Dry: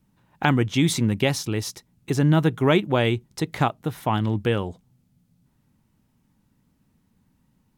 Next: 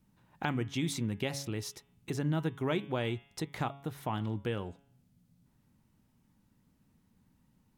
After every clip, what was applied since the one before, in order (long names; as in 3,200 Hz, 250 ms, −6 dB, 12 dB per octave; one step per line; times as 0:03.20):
hum removal 139.1 Hz, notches 26
downward compressor 1.5 to 1, threshold −42 dBFS, peak gain reduction 10 dB
level −3.5 dB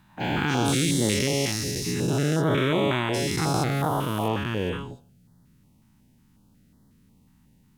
every bin's largest magnitude spread in time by 480 ms
notch on a step sequencer 5.5 Hz 480–2,500 Hz
level +3.5 dB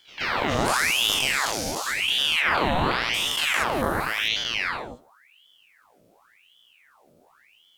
echo ahead of the sound 126 ms −20.5 dB
ring modulator whose carrier an LFO sweeps 1,800 Hz, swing 80%, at 0.91 Hz
level +3 dB